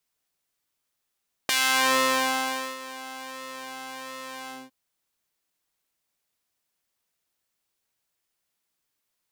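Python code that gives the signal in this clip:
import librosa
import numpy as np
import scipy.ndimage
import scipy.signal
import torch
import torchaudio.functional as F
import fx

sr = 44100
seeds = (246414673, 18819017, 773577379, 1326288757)

y = fx.sub_patch_pwm(sr, seeds[0], note=60, wave2='triangle', interval_st=-12, detune_cents=5, level2_db=-9.5, sub_db=-14.5, noise_db=-30.0, kind='highpass', cutoff_hz=220.0, q=0.82, env_oct=3.5, env_decay_s=0.45, env_sustain_pct=50, attack_ms=3.4, decay_s=1.28, sustain_db=-20.5, release_s=0.22, note_s=2.99, lfo_hz=1.4, width_pct=39, width_swing_pct=5)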